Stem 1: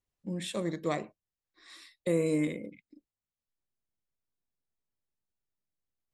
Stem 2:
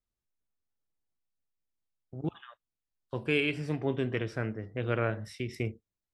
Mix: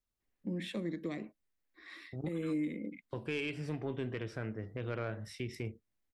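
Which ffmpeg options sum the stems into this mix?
-filter_complex "[0:a]equalizer=f=125:t=o:w=1:g=-12,equalizer=f=250:t=o:w=1:g=7,equalizer=f=2k:t=o:w=1:g=10,equalizer=f=8k:t=o:w=1:g=-11,acrossover=split=290|3000[a][b][c];[b]acompressor=threshold=-42dB:ratio=4[d];[a][d][c]amix=inputs=3:normalize=0,tiltshelf=f=730:g=4,adelay=200,volume=-0.5dB[e];[1:a]asoftclip=type=tanh:threshold=-19dB,volume=-0.5dB[f];[e][f]amix=inputs=2:normalize=0,alimiter=level_in=4dB:limit=-24dB:level=0:latency=1:release=299,volume=-4dB"

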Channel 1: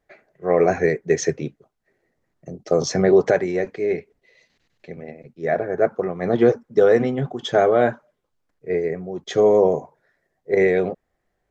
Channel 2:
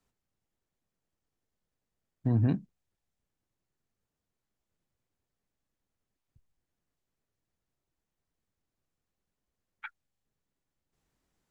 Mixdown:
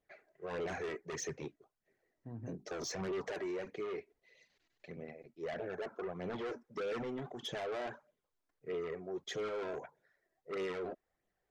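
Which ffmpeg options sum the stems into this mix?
-filter_complex "[0:a]asoftclip=type=tanh:threshold=-21.5dB,flanger=delay=0.3:depth=2.8:regen=25:speed=1.6:shape=sinusoidal,volume=-5dB[a];[1:a]lowpass=2.3k,bandreject=f=50:t=h:w=6,bandreject=f=100:t=h:w=6,bandreject=f=150:t=h:w=6,bandreject=f=200:t=h:w=6,bandreject=f=250:t=h:w=6,bandreject=f=300:t=h:w=6,bandreject=f=350:t=h:w=6,bandreject=f=400:t=h:w=6,volume=-14.5dB[b];[a][b]amix=inputs=2:normalize=0,lowshelf=f=180:g=-9,alimiter=level_in=9dB:limit=-24dB:level=0:latency=1:release=51,volume=-9dB"

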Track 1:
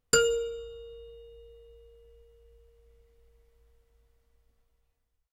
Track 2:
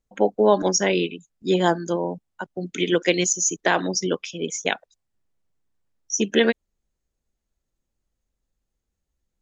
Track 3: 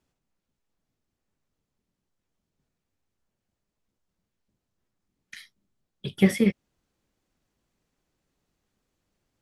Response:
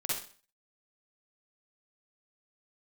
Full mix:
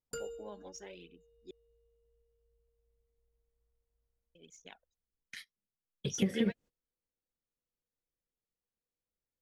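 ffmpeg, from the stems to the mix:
-filter_complex "[0:a]equalizer=f=2.9k:w=0.36:g=-8.5,volume=-16dB[a];[1:a]aphaser=in_gain=1:out_gain=1:delay=4.6:decay=0.55:speed=0.87:type=triangular,volume=-16.5dB,asplit=3[b][c][d];[b]atrim=end=1.51,asetpts=PTS-STARTPTS,afade=t=out:st=1.506:d=0.004:c=hsin[e];[c]atrim=start=1.51:end=4.35,asetpts=PTS-STARTPTS,volume=0[f];[d]atrim=start=4.35,asetpts=PTS-STARTPTS,afade=t=in:d=0.004:c=hsin[g];[e][f][g]concat=n=3:v=0:a=1[h];[2:a]agate=range=-21dB:threshold=-44dB:ratio=16:detection=peak,equalizer=f=490:w=6.2:g=11,acrossover=split=450|5900[i][j][k];[i]acompressor=threshold=-18dB:ratio=4[l];[j]acompressor=threshold=-37dB:ratio=4[m];[k]acompressor=threshold=-53dB:ratio=4[n];[l][m][n]amix=inputs=3:normalize=0,volume=-2dB,asplit=2[o][p];[p]apad=whole_len=415176[q];[h][q]sidechaingate=range=-13dB:threshold=-48dB:ratio=16:detection=peak[r];[a][r][o]amix=inputs=3:normalize=0,acompressor=threshold=-31dB:ratio=2"

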